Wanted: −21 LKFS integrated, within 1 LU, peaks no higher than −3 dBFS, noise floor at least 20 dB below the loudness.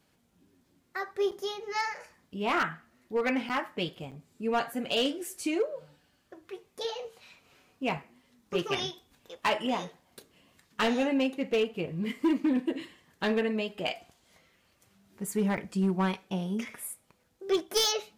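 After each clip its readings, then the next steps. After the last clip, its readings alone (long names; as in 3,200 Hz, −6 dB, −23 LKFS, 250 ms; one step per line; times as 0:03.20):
share of clipped samples 0.6%; peaks flattened at −20.5 dBFS; number of dropouts 4; longest dropout 7.1 ms; integrated loudness −31.0 LKFS; sample peak −20.5 dBFS; target loudness −21.0 LKFS
→ clipped peaks rebuilt −20.5 dBFS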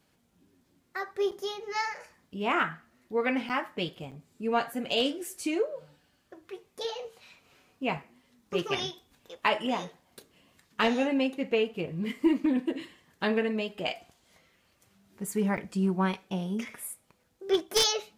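share of clipped samples 0.0%; number of dropouts 4; longest dropout 7.1 ms
→ repair the gap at 0:01.31/0:03.49/0:04.11/0:15.57, 7.1 ms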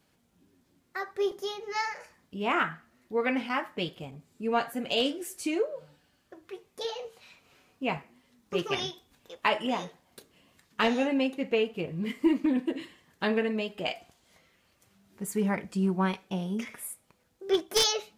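number of dropouts 0; integrated loudness −30.5 LKFS; sample peak −11.5 dBFS; target loudness −21.0 LKFS
→ level +9.5 dB
brickwall limiter −3 dBFS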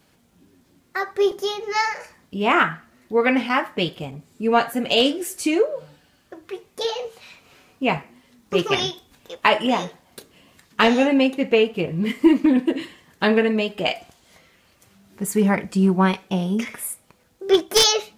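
integrated loudness −21.0 LKFS; sample peak −3.0 dBFS; background noise floor −60 dBFS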